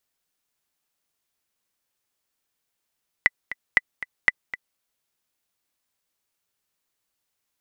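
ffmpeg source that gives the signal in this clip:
-f lavfi -i "aevalsrc='pow(10,(-2.5-15*gte(mod(t,2*60/235),60/235))/20)*sin(2*PI*1990*mod(t,60/235))*exp(-6.91*mod(t,60/235)/0.03)':d=1.53:s=44100"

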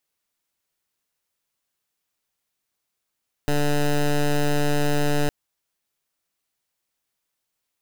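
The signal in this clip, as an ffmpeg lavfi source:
-f lavfi -i "aevalsrc='0.1*(2*lt(mod(146*t,1),0.13)-1)':d=1.81:s=44100"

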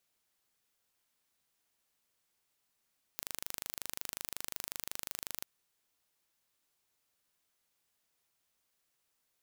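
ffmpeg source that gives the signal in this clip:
-f lavfi -i "aevalsrc='0.282*eq(mod(n,1729),0)':d=2.24:s=44100"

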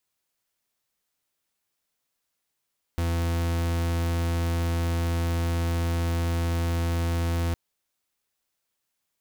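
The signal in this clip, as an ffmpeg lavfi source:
-f lavfi -i "aevalsrc='0.0531*(2*lt(mod(84.3*t,1),0.42)-1)':d=4.56:s=44100"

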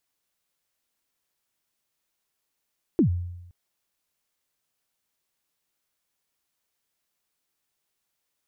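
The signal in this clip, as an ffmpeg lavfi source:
-f lavfi -i "aevalsrc='0.2*pow(10,-3*t/0.94)*sin(2*PI*(380*0.101/log(88/380)*(exp(log(88/380)*min(t,0.101)/0.101)-1)+88*max(t-0.101,0)))':d=0.52:s=44100"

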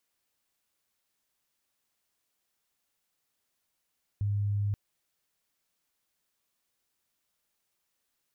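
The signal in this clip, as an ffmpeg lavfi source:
-f lavfi -i "aevalsrc='0.0501*sin(2*PI*102*t)':d=0.53:s=44100"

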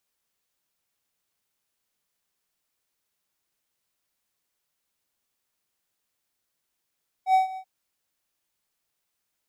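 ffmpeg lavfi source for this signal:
-f lavfi -i "aevalsrc='0.237*(1-4*abs(mod(756*t+0.25,1)-0.5))':d=0.383:s=44100,afade=t=in:d=0.082,afade=t=out:st=0.082:d=0.13:silence=0.126,afade=t=out:st=0.31:d=0.073"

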